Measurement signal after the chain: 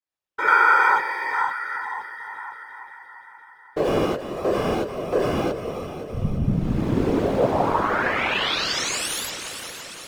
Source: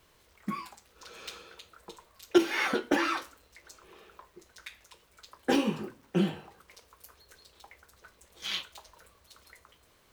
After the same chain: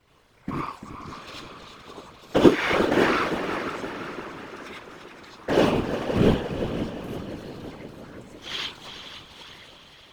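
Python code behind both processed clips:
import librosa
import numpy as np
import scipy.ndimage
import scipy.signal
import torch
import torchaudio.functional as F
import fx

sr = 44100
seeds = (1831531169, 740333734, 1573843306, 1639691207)

p1 = fx.cycle_switch(x, sr, every=3, mode='muted')
p2 = fx.lowpass(p1, sr, hz=2800.0, slope=6)
p3 = fx.rider(p2, sr, range_db=3, speed_s=0.5)
p4 = p2 + (p3 * 10.0 ** (0.5 / 20.0))
p5 = fx.echo_heads(p4, sr, ms=173, heads='second and third', feedback_pct=60, wet_db=-10.5)
p6 = fx.rev_gated(p5, sr, seeds[0], gate_ms=120, shape='rising', drr_db=-5.5)
p7 = fx.whisperise(p6, sr, seeds[1])
y = p7 * 10.0 ** (-3.5 / 20.0)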